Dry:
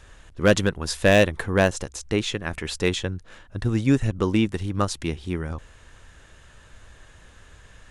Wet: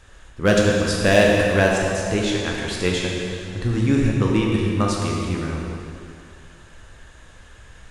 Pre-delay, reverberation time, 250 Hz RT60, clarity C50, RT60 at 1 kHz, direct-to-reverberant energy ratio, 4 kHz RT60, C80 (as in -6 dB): 8 ms, 2.5 s, 2.4 s, -0.5 dB, 2.6 s, -2.5 dB, 2.3 s, 1.0 dB